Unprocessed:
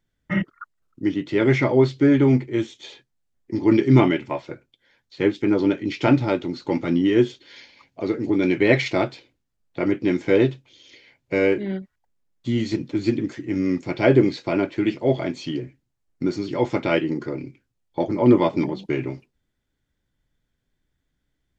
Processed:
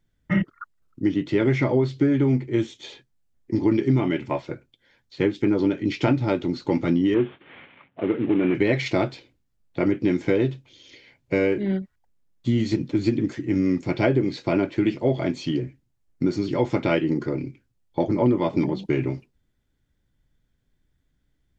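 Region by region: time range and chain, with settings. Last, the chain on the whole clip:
0:07.14–0:08.55: variable-slope delta modulation 16 kbit/s + high-pass filter 120 Hz
whole clip: low-shelf EQ 260 Hz +6 dB; downward compressor 12 to 1, threshold −16 dBFS

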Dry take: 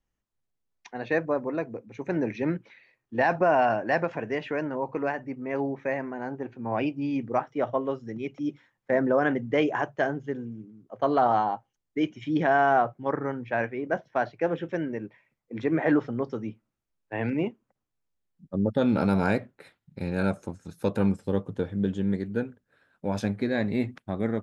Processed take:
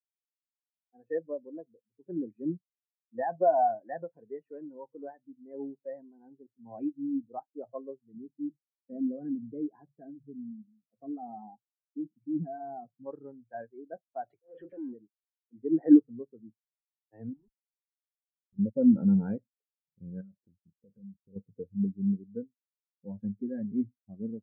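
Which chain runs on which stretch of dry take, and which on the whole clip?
0:08.14–0:13.06: parametric band 180 Hz +13.5 dB 1.8 octaves + downward compressor 2 to 1, threshold −24 dBFS + flanger 1.4 Hz, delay 2.3 ms, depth 2.7 ms, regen −76%
0:14.30–0:14.94: mid-hump overdrive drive 34 dB, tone 5,800 Hz, clips at −14.5 dBFS + downward compressor, threshold −28 dBFS + volume swells 198 ms
0:17.33–0:18.59: comparator with hysteresis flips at −30 dBFS + output level in coarse steps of 19 dB
0:20.21–0:21.36: leveller curve on the samples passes 2 + downward compressor, threshold −32 dBFS + parametric band 960 Hz −8 dB 1.1 octaves
whole clip: high-shelf EQ 3,800 Hz −11.5 dB; notch filter 610 Hz, Q 16; every bin expanded away from the loudest bin 2.5 to 1; level +3 dB

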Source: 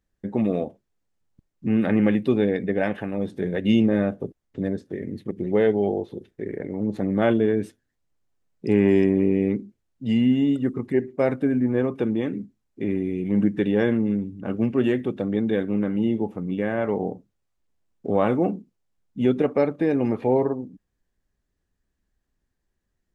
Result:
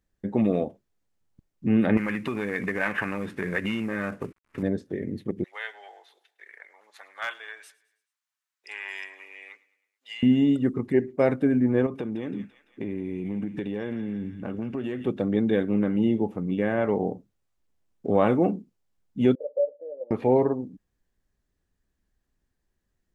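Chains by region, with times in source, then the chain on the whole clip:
0:01.97–0:04.63: variable-slope delta modulation 64 kbit/s + downward compressor, threshold −26 dBFS + flat-topped bell 1,600 Hz +14 dB
0:05.44–0:10.23: high-pass filter 1,100 Hz 24 dB per octave + hard clipping −20 dBFS + repeating echo 107 ms, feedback 52%, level −21 dB
0:11.86–0:15.07: downward compressor, threshold −27 dBFS + delay with a high-pass on its return 169 ms, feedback 59%, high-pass 1,500 Hz, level −7.5 dB
0:19.35–0:20.11: variable-slope delta modulation 64 kbit/s + flat-topped band-pass 550 Hz, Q 6.9
whole clip: no processing

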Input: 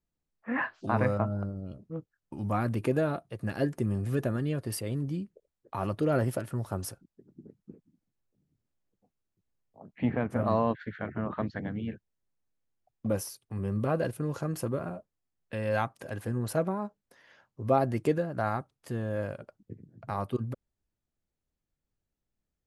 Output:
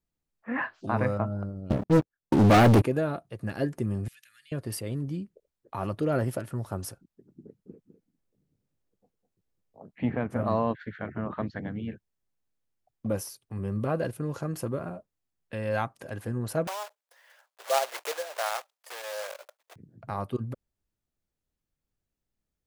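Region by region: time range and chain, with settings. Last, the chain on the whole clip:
0:01.70–0:02.82: parametric band 420 Hz +5 dB 2.7 octaves + leveller curve on the samples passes 5
0:04.08–0:04.52: inverse Chebyshev high-pass filter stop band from 830 Hz, stop band 50 dB + downward compressor 3 to 1, threshold −54 dBFS
0:07.45–0:09.90: parametric band 470 Hz +5.5 dB 0.65 octaves + single-tap delay 205 ms −10 dB
0:16.67–0:19.76: one scale factor per block 3 bits + Butterworth high-pass 530 Hz
whole clip: no processing

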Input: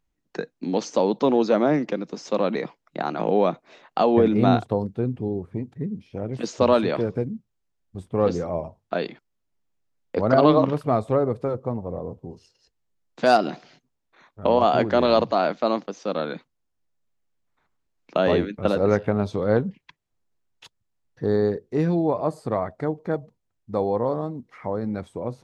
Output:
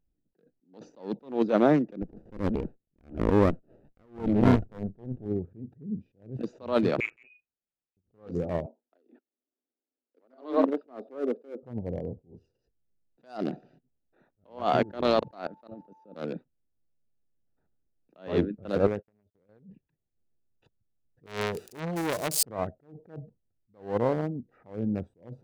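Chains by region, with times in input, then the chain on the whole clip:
0:02.02–0:05.26: low-pass filter 2,000 Hz 6 dB per octave + windowed peak hold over 33 samples
0:07.00–0:07.97: high-pass filter 490 Hz 6 dB per octave + double-tracking delay 35 ms −9.5 dB + voice inversion scrambler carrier 2,700 Hz
0:08.66–0:11.63: Chebyshev band-pass filter 240–5,000 Hz, order 5 + dynamic equaliser 2,300 Hz, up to −5 dB, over −37 dBFS, Q 0.83
0:14.67–0:16.15: parametric band 1,800 Hz +2 dB 0.84 octaves + output level in coarse steps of 21 dB + steady tone 880 Hz −43 dBFS
0:18.87–0:19.49: low-shelf EQ 170 Hz −5 dB + downward compressor 16 to 1, threshold −22 dBFS + noise gate −34 dBFS, range −55 dB
0:21.26–0:22.43: spike at every zero crossing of −21 dBFS + parametric band 5,600 Hz +8.5 dB 3 octaves + saturating transformer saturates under 2,400 Hz
whole clip: adaptive Wiener filter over 41 samples; level that may rise only so fast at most 170 dB per second

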